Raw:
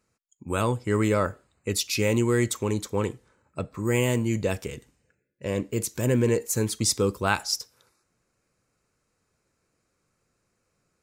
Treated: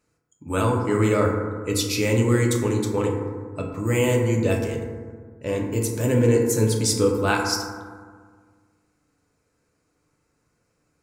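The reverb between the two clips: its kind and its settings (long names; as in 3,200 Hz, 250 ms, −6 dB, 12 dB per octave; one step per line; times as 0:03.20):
feedback delay network reverb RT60 1.7 s, low-frequency decay 1.25×, high-frequency decay 0.3×, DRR −0.5 dB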